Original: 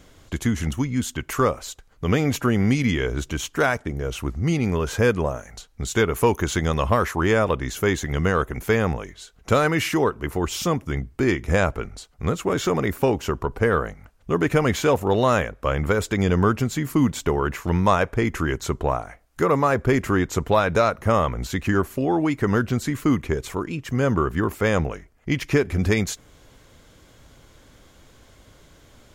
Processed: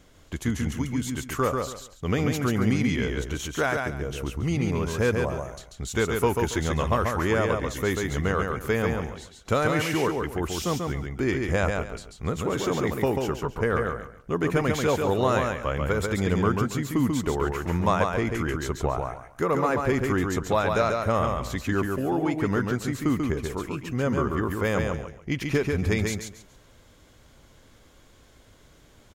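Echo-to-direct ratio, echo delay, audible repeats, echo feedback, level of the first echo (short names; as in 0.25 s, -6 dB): -3.5 dB, 0.139 s, 3, 25%, -4.0 dB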